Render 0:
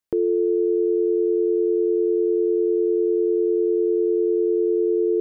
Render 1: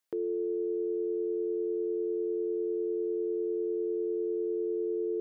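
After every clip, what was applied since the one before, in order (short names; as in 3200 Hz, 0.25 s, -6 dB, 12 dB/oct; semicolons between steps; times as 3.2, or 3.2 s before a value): limiter -25.5 dBFS, peak gain reduction 11 dB; HPF 430 Hz 6 dB/oct; gain +3 dB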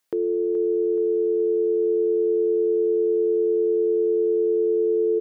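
feedback echo 0.425 s, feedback 58%, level -12.5 dB; gain +8.5 dB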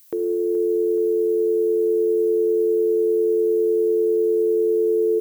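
reverb RT60 2.2 s, pre-delay 33 ms, DRR 11 dB; added noise violet -51 dBFS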